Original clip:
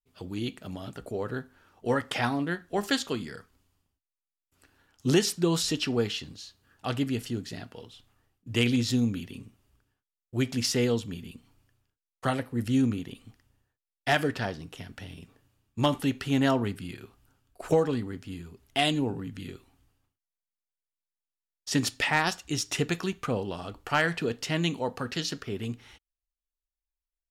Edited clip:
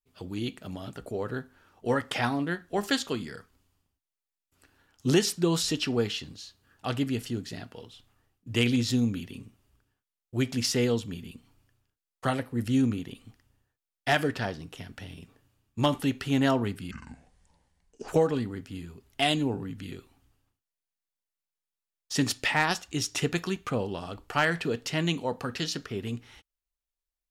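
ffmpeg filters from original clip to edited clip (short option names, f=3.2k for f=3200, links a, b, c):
-filter_complex "[0:a]asplit=3[a][b][c];[a]atrim=end=16.914[d];[b]atrim=start=16.91:end=17.65,asetpts=PTS-STARTPTS,asetrate=27783,aresample=44100[e];[c]atrim=start=17.646[f];[d][e]acrossfade=d=0.004:c1=hsin:c2=hsin[g];[g][f]acrossfade=d=0.004:c1=hsin:c2=hsin"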